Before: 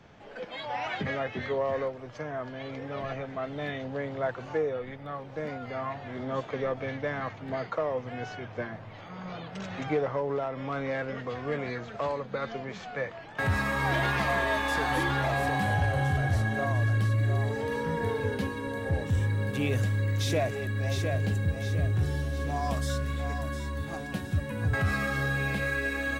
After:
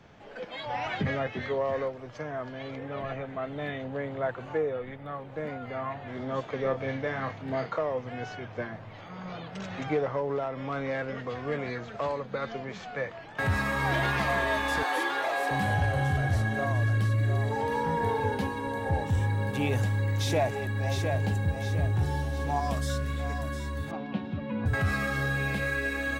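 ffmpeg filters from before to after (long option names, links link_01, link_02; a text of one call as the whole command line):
ffmpeg -i in.wav -filter_complex "[0:a]asettb=1/sr,asplit=3[link_01][link_02][link_03];[link_01]atrim=end=0.664[link_04];[link_02]atrim=start=0.66:end=1.27,asetpts=PTS-STARTPTS,afade=type=in:duration=0.004:curve=qsin,afade=type=out:start_time=0.606:duration=0.004:curve=qsin,lowshelf=frequency=200:gain=8[link_05];[link_03]atrim=start=1.266[link_06];[link_04][link_05]acrossfade=duration=0.004:curve1=hsin:curve2=qsin[link_07];[link_07][link_06]acrossfade=duration=0.004:curve1=qsin:curve2=hsin,asettb=1/sr,asplit=3[link_08][link_09][link_10];[link_08]atrim=end=2.754[link_11];[link_09]atrim=start=2.75:end=6.08,asetpts=PTS-STARTPTS,afade=type=in:duration=0.004:curve=qsin,afade=type=out:start_time=3.326:duration=0.004:curve=qsin,equalizer=frequency=5400:width=2:gain=-10[link_12];[link_10]atrim=start=6.076[link_13];[link_11][link_12]acrossfade=duration=0.004:curve1=hsin:curve2=qsin[link_14];[link_14][link_13]acrossfade=duration=0.004:curve1=qsin:curve2=hsin,asettb=1/sr,asplit=3[link_15][link_16][link_17];[link_15]atrim=end=6.624[link_18];[link_16]atrim=start=6.62:end=7.79,asetpts=PTS-STARTPTS,afade=type=in:duration=0.004:curve=qsin,afade=type=out:start_time=1.166:duration=0.004:curve=qsin,asplit=2[link_19][link_20];[link_20]adelay=30,volume=-6dB[link_21];[link_19][link_21]amix=inputs=2:normalize=0,atrim=end_sample=51597[link_22];[link_17]atrim=start=7.786[link_23];[link_18][link_22]acrossfade=duration=0.004:curve1=hsin:curve2=qsin[link_24];[link_24][link_23]acrossfade=duration=0.004:curve1=qsin:curve2=hsin,asettb=1/sr,asplit=3[link_25][link_26][link_27];[link_25]atrim=end=14.834[link_28];[link_26]atrim=start=14.83:end=15.51,asetpts=PTS-STARTPTS,afade=type=in:duration=0.004:curve=qsin,afade=type=out:start_time=0.676:duration=0.004:curve=qsin,highpass=frequency=340:width=0.5412,highpass=frequency=340:width=1.3066[link_29];[link_27]atrim=start=15.506[link_30];[link_28][link_29]acrossfade=duration=0.004:curve1=hsin:curve2=qsin[link_31];[link_31][link_30]acrossfade=duration=0.004:curve1=qsin:curve2=hsin,asettb=1/sr,asplit=3[link_32][link_33][link_34];[link_32]atrim=end=17.514[link_35];[link_33]atrim=start=17.51:end=22.6,asetpts=PTS-STARTPTS,afade=type=in:duration=0.004:curve=qsin,afade=type=out:start_time=5.086:duration=0.004:curve=qsin,equalizer=frequency=850:width=5.4:gain=14.5[link_36];[link_34]atrim=start=22.596[link_37];[link_35][link_36]acrossfade=duration=0.004:curve1=hsin:curve2=qsin[link_38];[link_38][link_37]acrossfade=duration=0.004:curve1=qsin:curve2=hsin,asettb=1/sr,asplit=3[link_39][link_40][link_41];[link_39]atrim=end=23.914[link_42];[link_40]atrim=start=23.91:end=24.66,asetpts=PTS-STARTPTS,afade=type=in:duration=0.004:curve=qsin,afade=type=out:start_time=0.746:duration=0.004:curve=qsin,highpass=160,equalizer=frequency=220:width_type=q:width=4:gain=8,equalizer=frequency=890:width_type=q:width=4:gain=4,equalizer=frequency=1700:width_type=q:width=4:gain=-8,lowpass=frequency=3500:width=0.5412,lowpass=frequency=3500:width=1.3066[link_43];[link_41]atrim=start=24.656[link_44];[link_42][link_43]acrossfade=duration=0.004:curve1=hsin:curve2=qsin[link_45];[link_45][link_44]acrossfade=duration=0.004:curve1=qsin:curve2=hsin" out.wav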